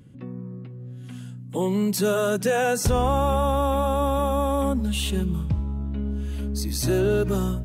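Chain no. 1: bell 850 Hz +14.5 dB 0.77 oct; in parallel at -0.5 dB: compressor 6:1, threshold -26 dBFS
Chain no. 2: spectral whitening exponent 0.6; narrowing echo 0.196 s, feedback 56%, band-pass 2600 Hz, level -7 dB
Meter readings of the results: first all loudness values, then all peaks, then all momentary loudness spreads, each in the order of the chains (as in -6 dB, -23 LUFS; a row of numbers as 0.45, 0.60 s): -16.5, -23.0 LUFS; -3.0, -8.5 dBFS; 19, 17 LU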